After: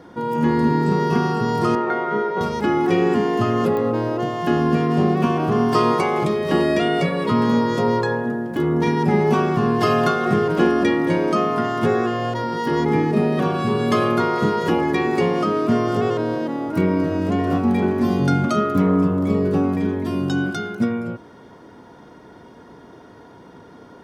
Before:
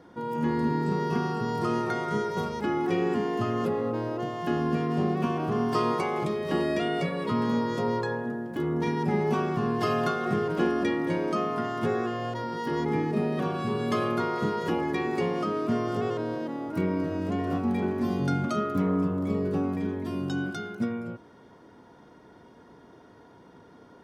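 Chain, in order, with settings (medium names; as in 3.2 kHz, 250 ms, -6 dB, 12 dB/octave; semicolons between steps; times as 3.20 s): 1.75–2.41 s: band-pass 280–2100 Hz; clicks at 3.77 s, -25 dBFS; trim +8.5 dB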